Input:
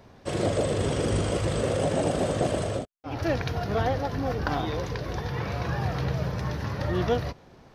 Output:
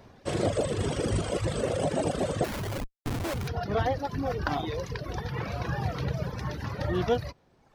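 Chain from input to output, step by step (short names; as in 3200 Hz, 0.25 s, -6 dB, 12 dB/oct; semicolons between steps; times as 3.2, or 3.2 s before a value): 2.44–3.48 Schmitt trigger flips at -30.5 dBFS; reverb removal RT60 1.2 s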